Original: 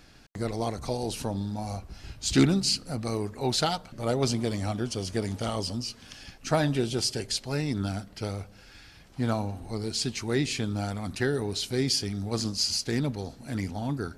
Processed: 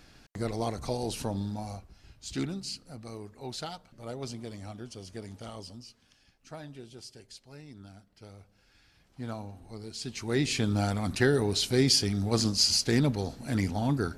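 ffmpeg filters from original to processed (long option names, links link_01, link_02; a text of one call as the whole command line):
ffmpeg -i in.wav -af "volume=20.5dB,afade=type=out:start_time=1.48:duration=0.46:silence=0.298538,afade=type=out:start_time=5.55:duration=0.63:silence=0.446684,afade=type=in:start_time=8.08:duration=1.19:silence=0.354813,afade=type=in:start_time=9.99:duration=0.74:silence=0.223872" out.wav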